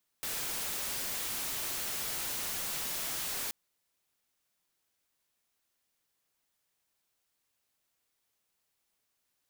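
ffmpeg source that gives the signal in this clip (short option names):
-f lavfi -i "anoisesrc=c=white:a=0.0274:d=3.28:r=44100:seed=1"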